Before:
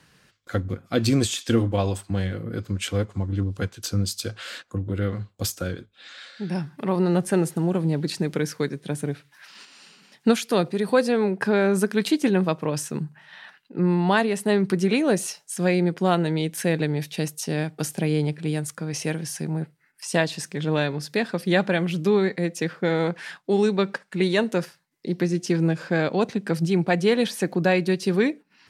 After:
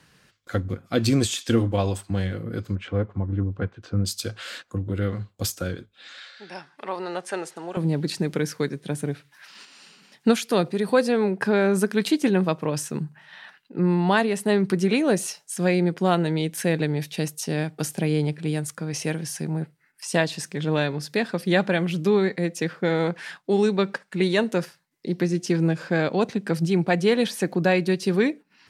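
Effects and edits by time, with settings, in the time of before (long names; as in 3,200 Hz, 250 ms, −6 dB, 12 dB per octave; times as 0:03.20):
0:02.75–0:04.05: low-pass filter 1,700 Hz
0:06.20–0:07.77: band-pass filter 620–7,000 Hz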